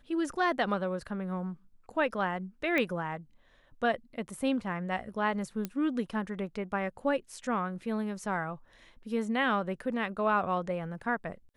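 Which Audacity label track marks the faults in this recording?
2.780000	2.780000	click −17 dBFS
5.650000	5.650000	click −19 dBFS

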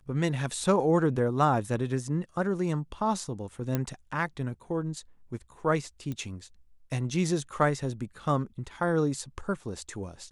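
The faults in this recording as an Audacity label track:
3.750000	3.750000	click −14 dBFS
6.120000	6.120000	click −23 dBFS

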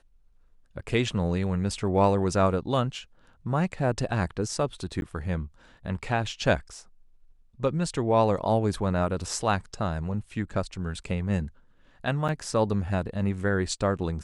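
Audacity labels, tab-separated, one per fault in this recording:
5.010000	5.020000	drop-out 11 ms
12.280000	12.290000	drop-out 7.3 ms

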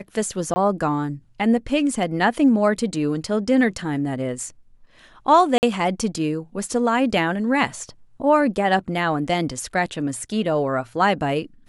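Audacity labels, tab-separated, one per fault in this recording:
0.540000	0.560000	drop-out 20 ms
5.580000	5.630000	drop-out 49 ms

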